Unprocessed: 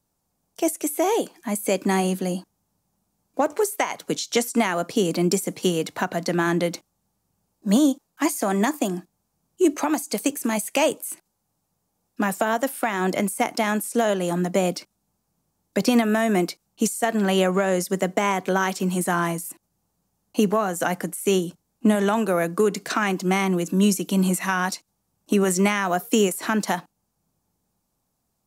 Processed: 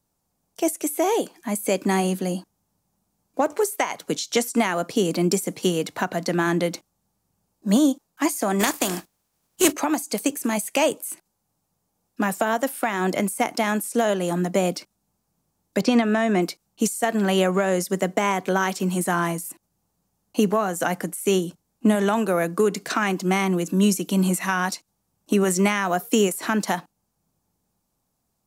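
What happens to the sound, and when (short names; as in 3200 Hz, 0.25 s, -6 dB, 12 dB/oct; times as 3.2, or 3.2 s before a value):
8.59–9.71 spectral contrast lowered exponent 0.56
15.81–16.42 LPF 5800 Hz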